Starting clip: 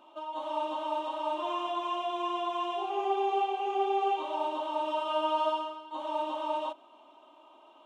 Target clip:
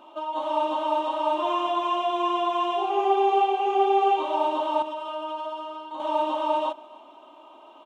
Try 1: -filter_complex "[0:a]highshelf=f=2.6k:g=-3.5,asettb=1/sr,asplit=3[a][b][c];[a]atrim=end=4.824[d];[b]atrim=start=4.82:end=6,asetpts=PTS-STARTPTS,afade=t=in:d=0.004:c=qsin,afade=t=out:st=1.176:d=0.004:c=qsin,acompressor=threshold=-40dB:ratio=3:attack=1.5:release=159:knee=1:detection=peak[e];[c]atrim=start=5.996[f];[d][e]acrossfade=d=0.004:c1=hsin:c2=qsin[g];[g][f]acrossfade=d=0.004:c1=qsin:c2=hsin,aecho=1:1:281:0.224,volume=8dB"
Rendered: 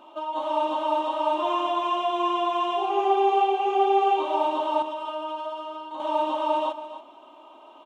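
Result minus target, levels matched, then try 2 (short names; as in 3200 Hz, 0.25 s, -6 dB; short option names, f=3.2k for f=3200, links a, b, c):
echo-to-direct +10.5 dB
-filter_complex "[0:a]highshelf=f=2.6k:g=-3.5,asettb=1/sr,asplit=3[a][b][c];[a]atrim=end=4.824[d];[b]atrim=start=4.82:end=6,asetpts=PTS-STARTPTS,afade=t=in:d=0.004:c=qsin,afade=t=out:st=1.176:d=0.004:c=qsin,acompressor=threshold=-40dB:ratio=3:attack=1.5:release=159:knee=1:detection=peak[e];[c]atrim=start=5.996[f];[d][e]acrossfade=d=0.004:c1=hsin:c2=qsin[g];[g][f]acrossfade=d=0.004:c1=qsin:c2=hsin,aecho=1:1:281:0.0668,volume=8dB"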